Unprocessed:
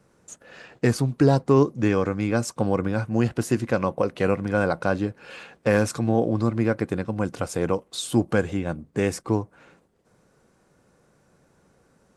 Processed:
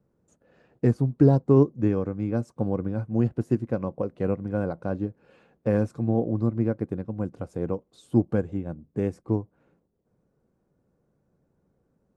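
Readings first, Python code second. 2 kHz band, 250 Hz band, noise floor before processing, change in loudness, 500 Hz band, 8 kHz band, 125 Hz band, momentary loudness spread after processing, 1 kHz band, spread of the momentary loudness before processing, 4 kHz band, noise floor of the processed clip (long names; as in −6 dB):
−14.5 dB, −1.5 dB, −63 dBFS, −2.0 dB, −3.5 dB, below −20 dB, 0.0 dB, 12 LU, −9.0 dB, 8 LU, below −20 dB, −73 dBFS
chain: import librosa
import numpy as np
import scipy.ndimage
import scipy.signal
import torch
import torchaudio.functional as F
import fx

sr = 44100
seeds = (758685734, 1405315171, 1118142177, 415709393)

y = fx.tilt_shelf(x, sr, db=9.5, hz=970.0)
y = fx.upward_expand(y, sr, threshold_db=-25.0, expansion=1.5)
y = y * librosa.db_to_amplitude(-6.5)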